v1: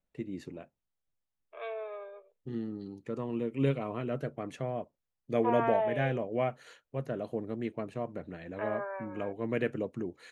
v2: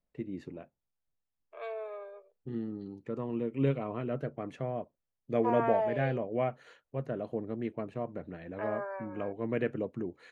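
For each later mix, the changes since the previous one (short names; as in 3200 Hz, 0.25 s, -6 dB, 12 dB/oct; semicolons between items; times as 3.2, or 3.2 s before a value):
second voice: remove steep low-pass 3800 Hz 96 dB/oct; master: add LPF 2300 Hz 6 dB/oct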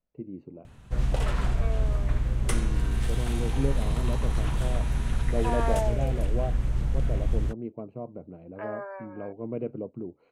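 first voice: add running mean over 25 samples; background: unmuted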